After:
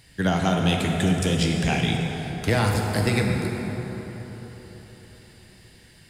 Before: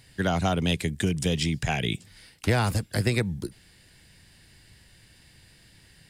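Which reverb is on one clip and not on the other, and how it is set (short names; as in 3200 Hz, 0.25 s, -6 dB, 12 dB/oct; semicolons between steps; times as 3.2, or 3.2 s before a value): plate-style reverb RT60 4.5 s, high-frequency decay 0.5×, DRR 0.5 dB; gain +1 dB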